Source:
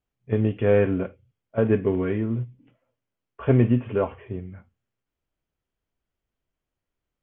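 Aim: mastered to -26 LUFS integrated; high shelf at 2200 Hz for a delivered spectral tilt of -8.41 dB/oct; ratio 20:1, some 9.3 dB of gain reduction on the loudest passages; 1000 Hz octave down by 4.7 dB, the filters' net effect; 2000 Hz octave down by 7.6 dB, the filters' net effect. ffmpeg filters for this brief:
-af "equalizer=f=1k:t=o:g=-4.5,equalizer=f=2k:t=o:g=-6.5,highshelf=f=2.2k:g=-3.5,acompressor=threshold=-23dB:ratio=20,volume=5dB"

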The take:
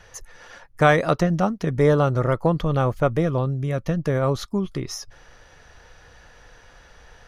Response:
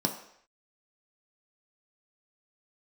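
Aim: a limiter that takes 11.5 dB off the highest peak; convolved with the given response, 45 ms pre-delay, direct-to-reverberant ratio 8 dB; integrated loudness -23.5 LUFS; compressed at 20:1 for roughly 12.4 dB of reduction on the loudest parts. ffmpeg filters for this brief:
-filter_complex "[0:a]acompressor=threshold=-24dB:ratio=20,alimiter=level_in=1.5dB:limit=-24dB:level=0:latency=1,volume=-1.5dB,asplit=2[a][b];[1:a]atrim=start_sample=2205,adelay=45[c];[b][c]afir=irnorm=-1:irlink=0,volume=-15dB[d];[a][d]amix=inputs=2:normalize=0,volume=9.5dB"

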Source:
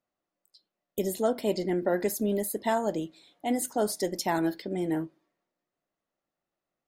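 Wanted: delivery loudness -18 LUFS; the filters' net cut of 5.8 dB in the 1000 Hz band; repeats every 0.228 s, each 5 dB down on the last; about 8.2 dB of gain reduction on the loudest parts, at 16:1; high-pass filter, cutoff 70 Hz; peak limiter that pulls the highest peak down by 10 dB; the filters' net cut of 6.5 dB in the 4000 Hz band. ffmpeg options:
-af "highpass=70,equalizer=f=1k:t=o:g=-8.5,equalizer=f=4k:t=o:g=-9,acompressor=threshold=-31dB:ratio=16,alimiter=level_in=5dB:limit=-24dB:level=0:latency=1,volume=-5dB,aecho=1:1:228|456|684|912|1140|1368|1596:0.562|0.315|0.176|0.0988|0.0553|0.031|0.0173,volume=20dB"

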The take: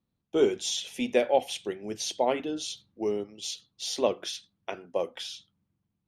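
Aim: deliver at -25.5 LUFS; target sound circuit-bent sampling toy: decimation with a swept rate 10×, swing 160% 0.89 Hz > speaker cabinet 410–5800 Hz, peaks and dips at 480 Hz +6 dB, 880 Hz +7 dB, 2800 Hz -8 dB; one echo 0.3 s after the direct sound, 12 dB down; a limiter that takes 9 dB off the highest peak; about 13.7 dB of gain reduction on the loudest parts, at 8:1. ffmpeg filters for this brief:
-af "acompressor=threshold=-32dB:ratio=8,alimiter=level_in=3.5dB:limit=-24dB:level=0:latency=1,volume=-3.5dB,aecho=1:1:300:0.251,acrusher=samples=10:mix=1:aa=0.000001:lfo=1:lforange=16:lforate=0.89,highpass=410,equalizer=f=480:t=q:w=4:g=6,equalizer=f=880:t=q:w=4:g=7,equalizer=f=2.8k:t=q:w=4:g=-8,lowpass=f=5.8k:w=0.5412,lowpass=f=5.8k:w=1.3066,volume=14.5dB"

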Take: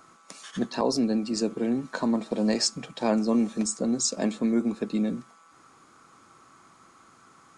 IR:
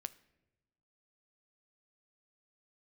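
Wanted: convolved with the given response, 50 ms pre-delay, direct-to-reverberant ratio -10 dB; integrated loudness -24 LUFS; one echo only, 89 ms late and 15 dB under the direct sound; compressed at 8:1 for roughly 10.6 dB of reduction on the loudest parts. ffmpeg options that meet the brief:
-filter_complex "[0:a]acompressor=threshold=-31dB:ratio=8,aecho=1:1:89:0.178,asplit=2[a][b];[1:a]atrim=start_sample=2205,adelay=50[c];[b][c]afir=irnorm=-1:irlink=0,volume=13.5dB[d];[a][d]amix=inputs=2:normalize=0,volume=0.5dB"

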